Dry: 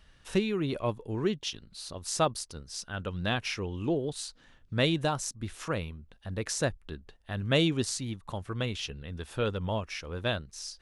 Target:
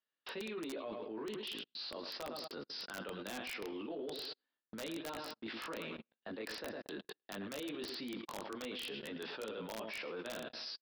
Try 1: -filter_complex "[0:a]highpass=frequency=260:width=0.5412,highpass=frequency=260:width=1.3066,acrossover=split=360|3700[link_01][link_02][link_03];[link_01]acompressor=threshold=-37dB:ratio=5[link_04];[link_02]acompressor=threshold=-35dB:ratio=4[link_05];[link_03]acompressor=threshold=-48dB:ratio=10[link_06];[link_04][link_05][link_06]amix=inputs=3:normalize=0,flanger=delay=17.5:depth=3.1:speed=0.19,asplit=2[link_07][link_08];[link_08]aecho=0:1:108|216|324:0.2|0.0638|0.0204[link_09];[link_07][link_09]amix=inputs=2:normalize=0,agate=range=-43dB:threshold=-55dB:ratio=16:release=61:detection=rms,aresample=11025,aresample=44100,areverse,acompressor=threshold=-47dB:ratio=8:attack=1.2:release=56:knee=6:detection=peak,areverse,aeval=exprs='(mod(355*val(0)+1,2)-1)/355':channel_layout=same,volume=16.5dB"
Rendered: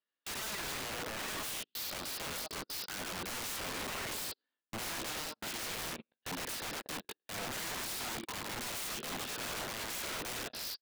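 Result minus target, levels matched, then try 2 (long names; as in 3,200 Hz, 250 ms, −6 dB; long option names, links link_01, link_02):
downward compressor: peak gain reduction −9 dB
-filter_complex "[0:a]highpass=frequency=260:width=0.5412,highpass=frequency=260:width=1.3066,acrossover=split=360|3700[link_01][link_02][link_03];[link_01]acompressor=threshold=-37dB:ratio=5[link_04];[link_02]acompressor=threshold=-35dB:ratio=4[link_05];[link_03]acompressor=threshold=-48dB:ratio=10[link_06];[link_04][link_05][link_06]amix=inputs=3:normalize=0,flanger=delay=17.5:depth=3.1:speed=0.19,asplit=2[link_07][link_08];[link_08]aecho=0:1:108|216|324:0.2|0.0638|0.0204[link_09];[link_07][link_09]amix=inputs=2:normalize=0,agate=range=-43dB:threshold=-55dB:ratio=16:release=61:detection=rms,aresample=11025,aresample=44100,areverse,acompressor=threshold=-57dB:ratio=8:attack=1.2:release=56:knee=6:detection=peak,areverse,aeval=exprs='(mod(355*val(0)+1,2)-1)/355':channel_layout=same,volume=16.5dB"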